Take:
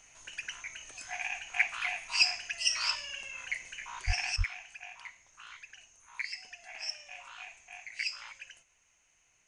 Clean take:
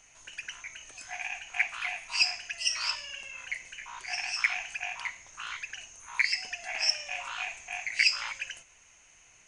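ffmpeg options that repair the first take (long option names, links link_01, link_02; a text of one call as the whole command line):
ffmpeg -i in.wav -filter_complex "[0:a]asplit=3[link_01][link_02][link_03];[link_01]afade=type=out:start_time=4.06:duration=0.02[link_04];[link_02]highpass=frequency=140:width=0.5412,highpass=frequency=140:width=1.3066,afade=type=in:start_time=4.06:duration=0.02,afade=type=out:start_time=4.18:duration=0.02[link_05];[link_03]afade=type=in:start_time=4.18:duration=0.02[link_06];[link_04][link_05][link_06]amix=inputs=3:normalize=0,asplit=3[link_07][link_08][link_09];[link_07]afade=type=out:start_time=4.37:duration=0.02[link_10];[link_08]highpass=frequency=140:width=0.5412,highpass=frequency=140:width=1.3066,afade=type=in:start_time=4.37:duration=0.02,afade=type=out:start_time=4.49:duration=0.02[link_11];[link_09]afade=type=in:start_time=4.49:duration=0.02[link_12];[link_10][link_11][link_12]amix=inputs=3:normalize=0,asetnsamples=nb_out_samples=441:pad=0,asendcmd='4.36 volume volume 11dB',volume=0dB" out.wav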